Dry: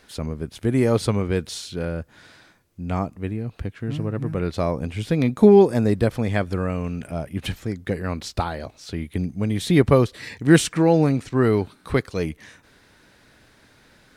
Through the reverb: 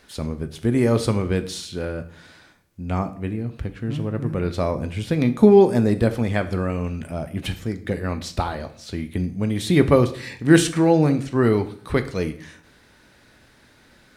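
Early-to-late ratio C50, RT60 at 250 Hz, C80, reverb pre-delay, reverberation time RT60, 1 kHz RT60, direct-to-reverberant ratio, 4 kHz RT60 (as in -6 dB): 14.0 dB, 0.70 s, 18.0 dB, 3 ms, 0.55 s, 0.55 s, 8.5 dB, 0.50 s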